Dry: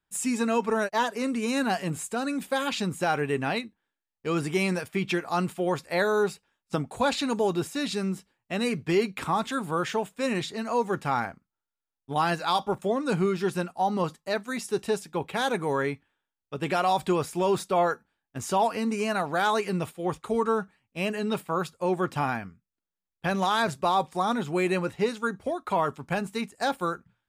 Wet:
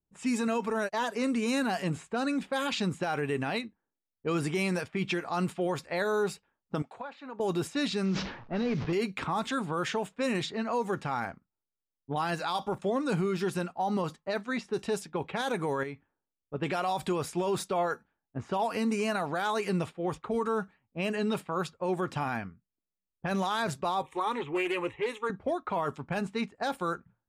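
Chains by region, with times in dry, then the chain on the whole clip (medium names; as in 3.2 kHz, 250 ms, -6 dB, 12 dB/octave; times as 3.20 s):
6.82–7.40 s: high-pass 1.4 kHz 6 dB/octave + compression 20:1, threshold -33 dBFS
8.05–8.93 s: one-bit delta coder 32 kbps, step -44.5 dBFS + decay stretcher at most 64 dB/s
15.83–16.54 s: median filter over 3 samples + compression 2.5:1, threshold -38 dBFS
24.02–25.30 s: peaking EQ 2.1 kHz +5 dB 1.7 oct + static phaser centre 990 Hz, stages 8 + loudspeaker Doppler distortion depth 0.12 ms
whole clip: level-controlled noise filter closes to 470 Hz, open at -23.5 dBFS; peak limiter -21.5 dBFS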